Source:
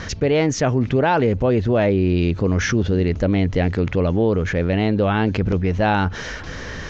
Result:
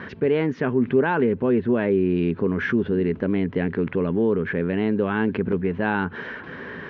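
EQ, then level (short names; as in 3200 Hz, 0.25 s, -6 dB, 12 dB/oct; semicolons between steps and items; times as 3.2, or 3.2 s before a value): dynamic EQ 680 Hz, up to -5 dB, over -30 dBFS, Q 1.8; speaker cabinet 140–3100 Hz, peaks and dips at 170 Hz +5 dB, 240 Hz +8 dB, 400 Hz +10 dB, 1000 Hz +6 dB, 1600 Hz +7 dB; -7.0 dB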